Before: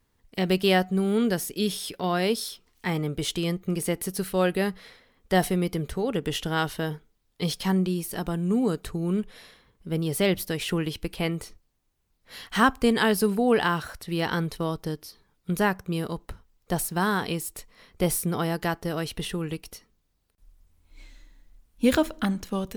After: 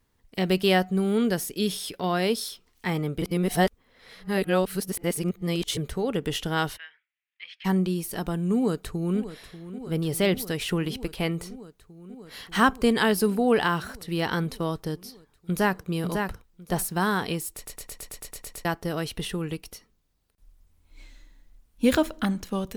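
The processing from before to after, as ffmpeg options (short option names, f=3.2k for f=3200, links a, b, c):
-filter_complex "[0:a]asplit=3[a][b][c];[a]afade=t=out:st=6.76:d=0.02[d];[b]asuperpass=centerf=2200:order=4:qfactor=2.1,afade=t=in:st=6.76:d=0.02,afade=t=out:st=7.64:d=0.02[e];[c]afade=t=in:st=7.64:d=0.02[f];[d][e][f]amix=inputs=3:normalize=0,asplit=2[g][h];[h]afade=t=in:st=8.55:d=0.01,afade=t=out:st=9.19:d=0.01,aecho=0:1:590|1180|1770|2360|2950|3540|4130|4720|5310|5900|6490|7080:0.211349|0.179647|0.1527|0.129795|0.110325|0.0937766|0.0797101|0.0677536|0.0575906|0.048952|0.0416092|0.0353678[i];[g][i]amix=inputs=2:normalize=0,asplit=2[j][k];[k]afade=t=in:st=14.98:d=0.01,afade=t=out:st=15.86:d=0.01,aecho=0:1:550|1100|1650:0.562341|0.112468|0.0224937[l];[j][l]amix=inputs=2:normalize=0,asplit=13[m][n][o][p][q][r][s][t][u][v][w][x][y];[m]atrim=end=3.222[z];[n]atrim=start=3.218:end=5.772,asetpts=PTS-STARTPTS,areverse[aa];[o]atrim=start=5.768:end=17.662[ab];[p]atrim=start=17.548:end=17.662[ac];[q]atrim=start=17.548:end=17.662[ad];[r]atrim=start=17.548:end=17.662[ae];[s]atrim=start=17.548:end=17.662[af];[t]atrim=start=17.548:end=17.662[ag];[u]atrim=start=17.548:end=17.662[ah];[v]atrim=start=17.548:end=17.662[ai];[w]atrim=start=17.548:end=17.662[aj];[x]atrim=start=17.548:end=17.662[ak];[y]atrim=start=18.648[al];[z][aa]acrossfade=d=0.004:c1=hsin:c2=hsin[am];[am][ab]acrossfade=d=0.004:c1=hsin:c2=hsin[an];[an][ac]acrossfade=d=0.004:c1=hsin:c2=hsin[ao];[ao][ad]acrossfade=d=0.004:c1=hsin:c2=hsin[ap];[ap][ae]acrossfade=d=0.004:c1=hsin:c2=hsin[aq];[aq][af]acrossfade=d=0.004:c1=hsin:c2=hsin[ar];[ar][ag]acrossfade=d=0.004:c1=hsin:c2=hsin[as];[as][ah]acrossfade=d=0.004:c1=hsin:c2=hsin[at];[at][ai]acrossfade=d=0.004:c1=hsin:c2=hsin[au];[au][aj]acrossfade=d=0.004:c1=hsin:c2=hsin[av];[av][ak]acrossfade=d=0.004:c1=hsin:c2=hsin[aw];[aw][al]acrossfade=d=0.004:c1=hsin:c2=hsin"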